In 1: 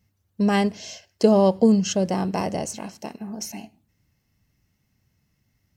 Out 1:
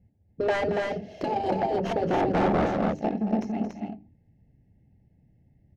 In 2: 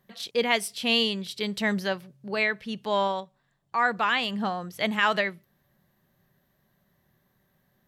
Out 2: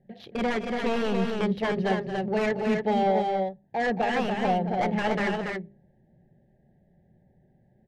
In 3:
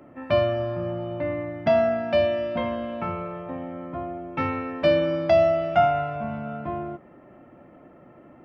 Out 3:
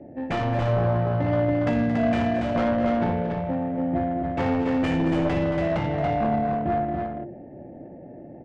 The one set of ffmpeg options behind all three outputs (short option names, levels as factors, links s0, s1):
-af "afftfilt=real='re*lt(hypot(re,im),0.398)':imag='im*lt(hypot(re,im),0.398)':win_size=1024:overlap=0.75,asuperstop=centerf=1200:order=20:qfactor=1.7,aresample=16000,aeval=exprs='0.0531*(abs(mod(val(0)/0.0531+3,4)-2)-1)':c=same,aresample=44100,adynamicsmooth=sensitivity=1.5:basefreq=820,bandreject=f=50:t=h:w=6,bandreject=f=100:t=h:w=6,bandreject=f=150:t=h:w=6,bandreject=f=200:t=h:w=6,bandreject=f=250:t=h:w=6,bandreject=f=300:t=h:w=6,bandreject=f=350:t=h:w=6,bandreject=f=400:t=h:w=6,aecho=1:1:224.5|282.8:0.282|0.631,volume=2.66"